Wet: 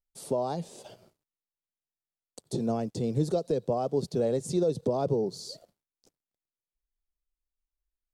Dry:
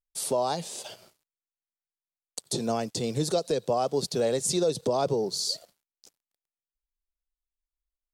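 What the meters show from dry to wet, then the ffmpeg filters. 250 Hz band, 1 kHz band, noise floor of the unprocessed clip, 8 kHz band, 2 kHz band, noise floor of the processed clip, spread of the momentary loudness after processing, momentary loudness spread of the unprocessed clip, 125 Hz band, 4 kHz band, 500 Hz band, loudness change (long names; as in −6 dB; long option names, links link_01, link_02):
+1.0 dB, −5.0 dB, below −85 dBFS, −13.0 dB, can't be measured, below −85 dBFS, 13 LU, 11 LU, +2.5 dB, −12.5 dB, −1.5 dB, −1.5 dB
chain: -af "tiltshelf=frequency=810:gain=8,volume=-5dB"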